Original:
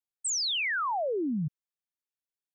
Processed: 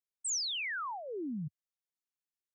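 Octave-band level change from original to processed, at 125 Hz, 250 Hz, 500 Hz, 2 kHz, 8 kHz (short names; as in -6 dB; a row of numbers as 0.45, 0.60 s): -8.0, -8.0, -11.0, -7.0, -4.0 dB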